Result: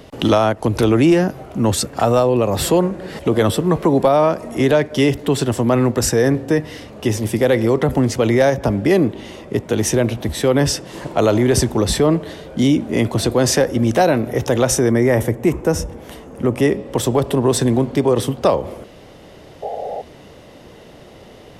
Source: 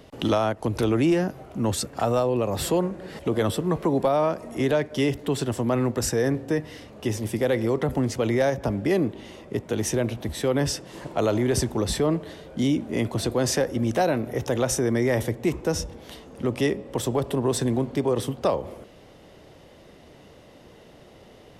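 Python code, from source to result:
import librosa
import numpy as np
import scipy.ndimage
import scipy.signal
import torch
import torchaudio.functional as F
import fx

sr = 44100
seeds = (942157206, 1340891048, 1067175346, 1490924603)

y = fx.peak_eq(x, sr, hz=4100.0, db=-9.5, octaves=1.1, at=(14.91, 16.72))
y = fx.spec_paint(y, sr, seeds[0], shape='noise', start_s=19.62, length_s=0.4, low_hz=410.0, high_hz=840.0, level_db=-34.0)
y = F.gain(torch.from_numpy(y), 8.0).numpy()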